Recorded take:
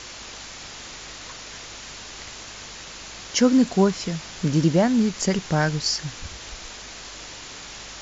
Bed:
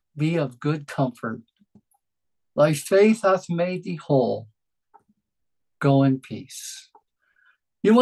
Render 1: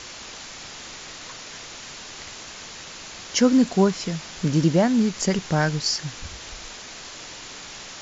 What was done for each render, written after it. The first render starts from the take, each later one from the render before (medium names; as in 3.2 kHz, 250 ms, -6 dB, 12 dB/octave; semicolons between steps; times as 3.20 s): de-hum 50 Hz, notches 2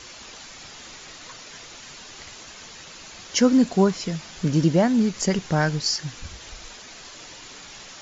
noise reduction 6 dB, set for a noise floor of -40 dBFS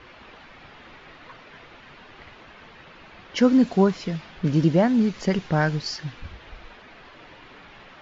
level-controlled noise filter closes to 2.2 kHz, open at -16 dBFS; low-pass 3.7 kHz 12 dB/octave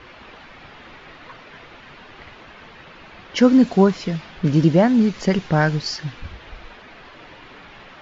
trim +4 dB